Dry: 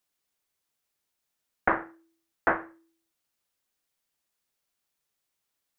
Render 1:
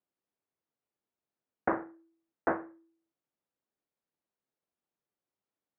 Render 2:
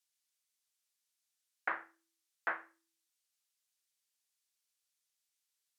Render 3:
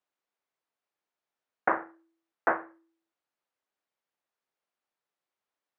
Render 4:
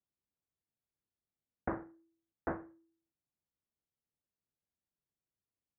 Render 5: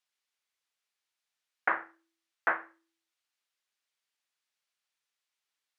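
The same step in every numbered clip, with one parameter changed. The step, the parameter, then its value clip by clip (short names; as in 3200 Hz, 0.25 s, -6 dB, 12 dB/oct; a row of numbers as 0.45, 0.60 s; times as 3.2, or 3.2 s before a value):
band-pass, frequency: 300, 6800, 760, 100, 2600 Hz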